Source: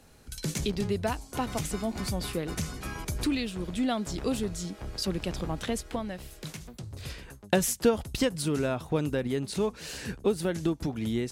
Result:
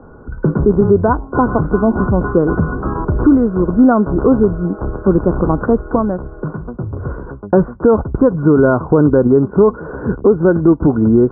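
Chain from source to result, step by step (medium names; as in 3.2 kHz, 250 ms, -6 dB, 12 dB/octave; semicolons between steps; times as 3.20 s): rippled Chebyshev low-pass 1.5 kHz, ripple 6 dB; loudness maximiser +23.5 dB; trim -1 dB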